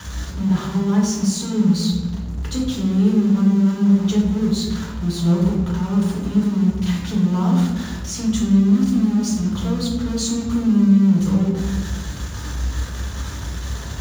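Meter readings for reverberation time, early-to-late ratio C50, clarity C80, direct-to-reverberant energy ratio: 1.2 s, 3.5 dB, 5.5 dB, -4.5 dB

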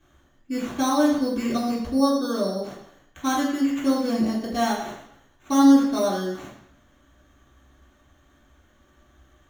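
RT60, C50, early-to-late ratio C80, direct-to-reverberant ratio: 0.70 s, 4.0 dB, 7.0 dB, -6.5 dB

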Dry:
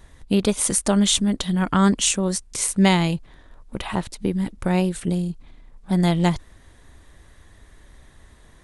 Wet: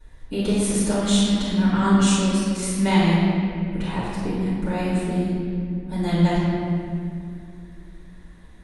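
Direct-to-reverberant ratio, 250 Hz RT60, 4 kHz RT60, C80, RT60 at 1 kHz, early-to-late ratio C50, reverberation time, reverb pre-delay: -14.5 dB, 3.8 s, 1.5 s, -1.0 dB, 2.1 s, -3.5 dB, 2.5 s, 3 ms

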